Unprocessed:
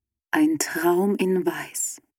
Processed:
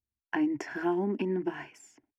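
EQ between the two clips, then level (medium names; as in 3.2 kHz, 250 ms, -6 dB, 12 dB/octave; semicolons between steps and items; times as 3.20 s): distance through air 220 m; -8.0 dB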